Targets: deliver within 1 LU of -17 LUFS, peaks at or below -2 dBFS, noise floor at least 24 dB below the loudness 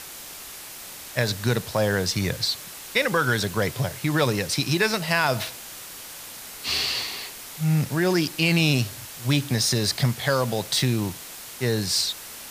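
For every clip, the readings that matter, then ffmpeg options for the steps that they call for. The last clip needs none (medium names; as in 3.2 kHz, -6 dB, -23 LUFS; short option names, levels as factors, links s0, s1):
noise floor -40 dBFS; noise floor target -48 dBFS; loudness -24.0 LUFS; peak level -6.0 dBFS; loudness target -17.0 LUFS
-> -af "afftdn=nr=8:nf=-40"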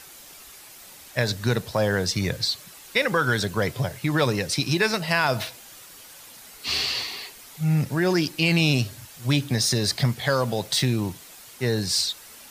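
noise floor -46 dBFS; noise floor target -48 dBFS
-> -af "afftdn=nr=6:nf=-46"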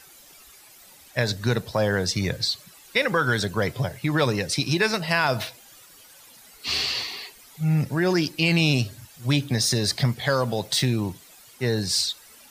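noise floor -50 dBFS; loudness -24.0 LUFS; peak level -6.5 dBFS; loudness target -17.0 LUFS
-> -af "volume=2.24,alimiter=limit=0.794:level=0:latency=1"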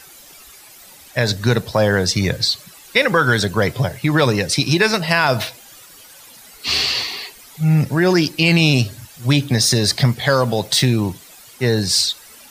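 loudness -17.0 LUFS; peak level -2.0 dBFS; noise floor -43 dBFS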